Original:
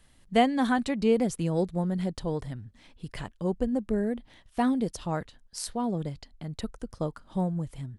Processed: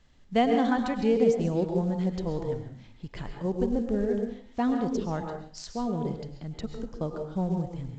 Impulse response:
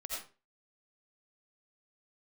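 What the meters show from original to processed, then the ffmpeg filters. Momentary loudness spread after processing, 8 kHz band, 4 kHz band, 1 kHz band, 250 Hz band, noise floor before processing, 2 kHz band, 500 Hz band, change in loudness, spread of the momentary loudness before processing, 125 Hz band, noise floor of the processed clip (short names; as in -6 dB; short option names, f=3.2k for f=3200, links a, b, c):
15 LU, -7.0 dB, -3.0 dB, -0.5 dB, +0.5 dB, -60 dBFS, -2.5 dB, +2.0 dB, +0.5 dB, 15 LU, +0.5 dB, -53 dBFS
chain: -filter_complex "[0:a]asplit=2[a][b];[b]tiltshelf=f=1.2k:g=5[c];[1:a]atrim=start_sample=2205,asetrate=28665,aresample=44100[d];[c][d]afir=irnorm=-1:irlink=0,volume=-3dB[e];[a][e]amix=inputs=2:normalize=0,volume=-6dB" -ar 16000 -c:a pcm_mulaw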